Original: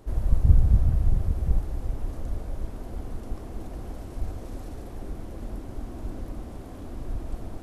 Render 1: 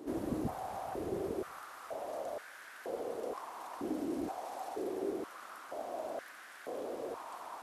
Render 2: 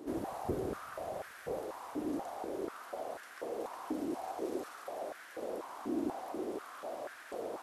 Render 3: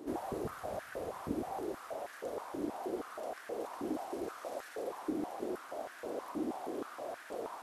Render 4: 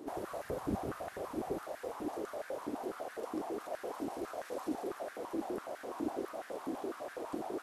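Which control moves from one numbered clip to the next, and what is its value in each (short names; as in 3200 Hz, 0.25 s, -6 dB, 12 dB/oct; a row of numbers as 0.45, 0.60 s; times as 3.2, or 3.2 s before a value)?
stepped high-pass, rate: 2.1, 4.1, 6.3, 12 Hz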